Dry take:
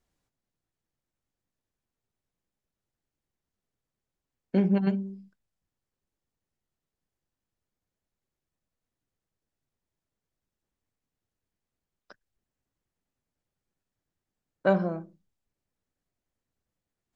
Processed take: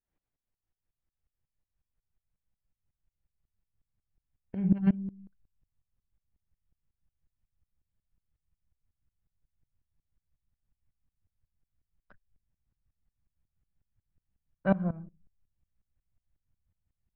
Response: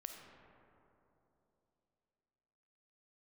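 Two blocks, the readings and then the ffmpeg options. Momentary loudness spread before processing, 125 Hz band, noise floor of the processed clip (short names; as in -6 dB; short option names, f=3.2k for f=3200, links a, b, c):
12 LU, -0.5 dB, under -85 dBFS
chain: -af "asubboost=boost=11:cutoff=110,lowpass=f=2.8k:w=0.5412,lowpass=f=2.8k:w=1.3066,aeval=exprs='val(0)*pow(10,-20*if(lt(mod(-5.5*n/s,1),2*abs(-5.5)/1000),1-mod(-5.5*n/s,1)/(2*abs(-5.5)/1000),(mod(-5.5*n/s,1)-2*abs(-5.5)/1000)/(1-2*abs(-5.5)/1000))/20)':c=same"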